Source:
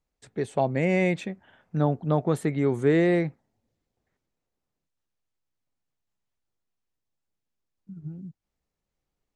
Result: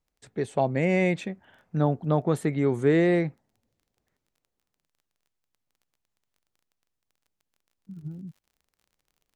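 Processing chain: crackle 18/s -51 dBFS, from 7.91 s 63/s

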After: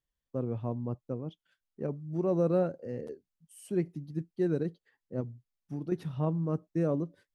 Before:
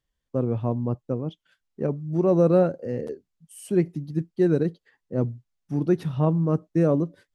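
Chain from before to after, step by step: 5.2–5.92 compressor, threshold -24 dBFS, peak gain reduction 8 dB; gain -8.5 dB

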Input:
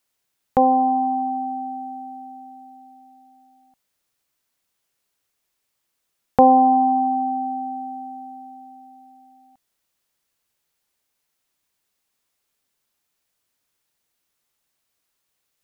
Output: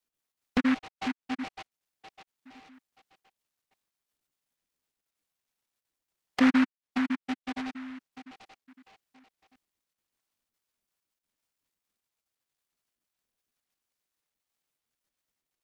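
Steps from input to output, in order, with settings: random spectral dropouts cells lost 73%; ten-band EQ 125 Hz -8 dB, 250 Hz +3 dB, 500 Hz -6 dB, 1000 Hz -12 dB; in parallel at -11 dB: overloaded stage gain 27.5 dB; on the sum: treble ducked by the level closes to 360 Hz, closed at -24.5 dBFS; dynamic EQ 280 Hz, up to +4 dB, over -33 dBFS, Q 1.2; noise-modulated delay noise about 1500 Hz, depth 0.19 ms; gain -3.5 dB

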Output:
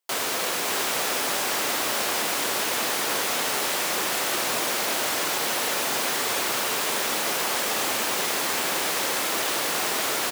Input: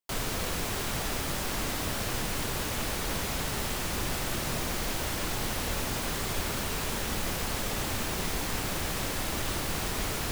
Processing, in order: HPF 410 Hz 12 dB/oct; on a send: echo 0.586 s -6 dB; on the sum: gain +7.5 dB

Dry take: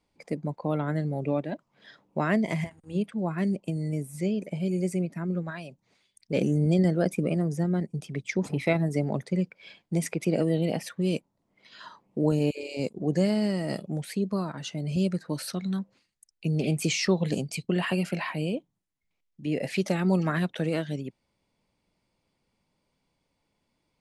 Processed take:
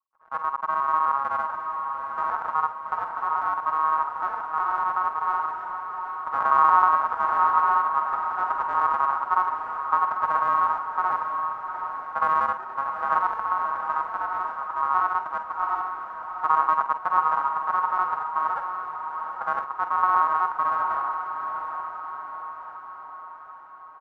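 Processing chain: local time reversal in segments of 62 ms; gate with hold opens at -58 dBFS; inverse Chebyshev low-pass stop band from 1600 Hz, stop band 70 dB; tilt -4 dB/oct; comb 6.8 ms, depth 87%; half-wave rectifier; ring modulator 1100 Hz; diffused feedback echo 0.788 s, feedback 56%, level -7 dB; on a send at -10 dB: reverb, pre-delay 46 ms; on the sum: gain -3 dB

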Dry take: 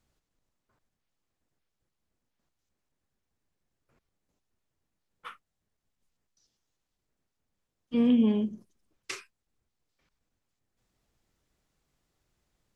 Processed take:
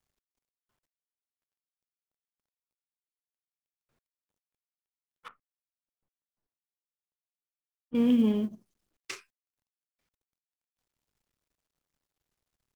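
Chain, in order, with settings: G.711 law mismatch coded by A; 5.28–7.95 LPF 1100 Hz 12 dB/oct

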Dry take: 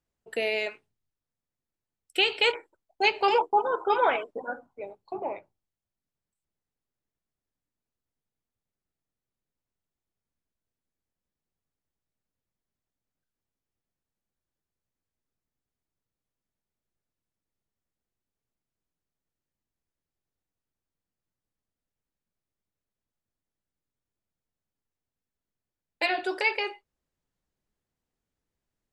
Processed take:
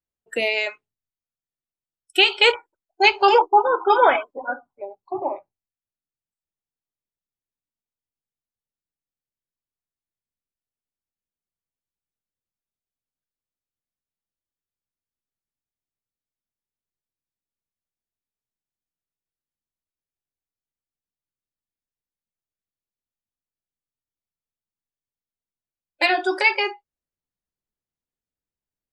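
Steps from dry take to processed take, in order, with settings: spectral noise reduction 18 dB; gain +8 dB

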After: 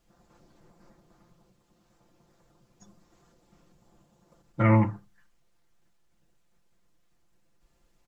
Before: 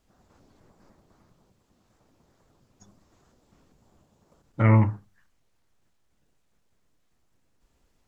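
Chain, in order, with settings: comb 5.8 ms; gain -1.5 dB

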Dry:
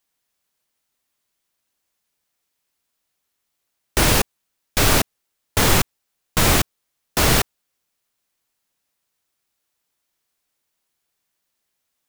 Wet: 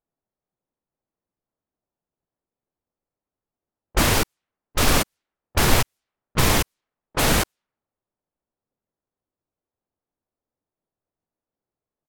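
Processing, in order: self-modulated delay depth 0.18 ms; harmoniser -4 st -2 dB, -3 st -3 dB, +4 st -17 dB; low-pass opened by the level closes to 670 Hz, open at -15.5 dBFS; gain -4 dB

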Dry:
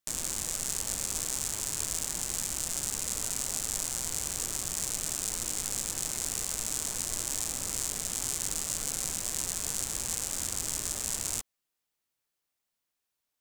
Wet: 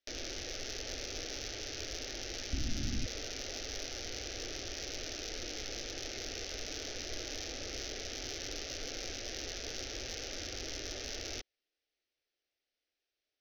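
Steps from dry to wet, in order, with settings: steep low-pass 6100 Hz 96 dB/oct; tone controls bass -4 dB, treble -6 dB; fixed phaser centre 420 Hz, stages 4; soft clip -29.5 dBFS, distortion -21 dB; 2.53–3.06 resonant low shelf 310 Hz +13 dB, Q 3; gain +4 dB

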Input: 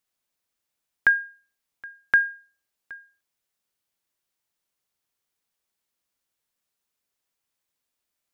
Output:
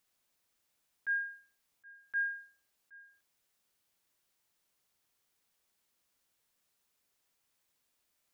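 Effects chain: auto swell 0.272 s; gain +3.5 dB

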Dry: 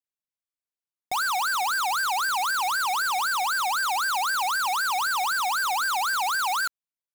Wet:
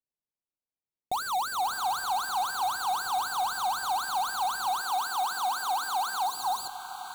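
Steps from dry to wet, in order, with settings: Wiener smoothing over 25 samples; Butterworth band-stop 5100 Hz, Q 6.1; bell 1600 Hz -7 dB 0.81 oct; diffused feedback echo 0.557 s, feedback 49%, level -10.5 dB; 6.27–6.73 spectral repair 1100–3600 Hz after; 4.81–6.37 HPF 190 Hz 12 dB/oct; gain +2.5 dB

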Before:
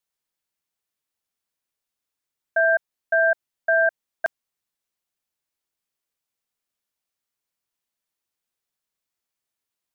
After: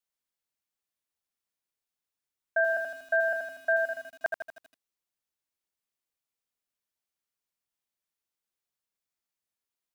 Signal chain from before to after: 3.85–4.25 compressor 2.5:1, threshold -29 dBFS, peak gain reduction 8.5 dB; lo-fi delay 80 ms, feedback 55%, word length 8-bit, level -4.5 dB; gain -5.5 dB

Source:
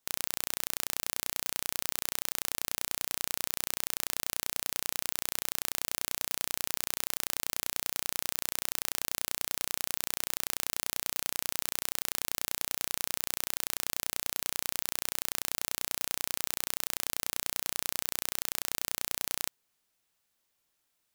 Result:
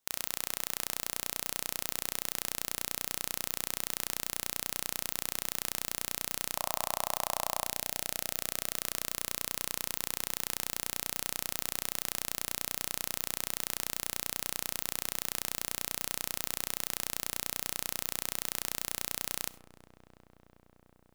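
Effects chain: 6.55–7.66 band shelf 810 Hz +14 dB 1.2 oct; darkening echo 0.363 s, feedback 83%, low-pass 3200 Hz, level -19 dB; digital reverb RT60 0.64 s, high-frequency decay 0.4×, pre-delay 25 ms, DRR 17 dB; gain -1.5 dB

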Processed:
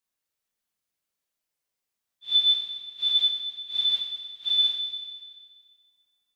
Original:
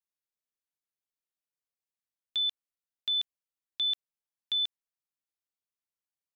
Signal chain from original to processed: phase scrambler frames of 0.2 s; Schroeder reverb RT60 1.8 s, combs from 28 ms, DRR 3.5 dB; gain +7.5 dB

